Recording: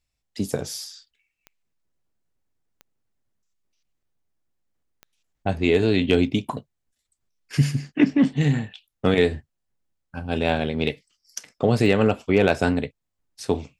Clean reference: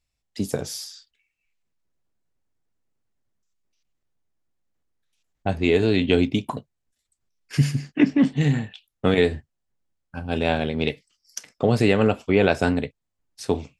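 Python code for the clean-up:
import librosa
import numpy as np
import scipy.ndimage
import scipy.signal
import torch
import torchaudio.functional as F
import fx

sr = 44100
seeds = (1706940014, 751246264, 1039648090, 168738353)

y = fx.fix_declip(x, sr, threshold_db=-7.0)
y = fx.fix_declick_ar(y, sr, threshold=10.0)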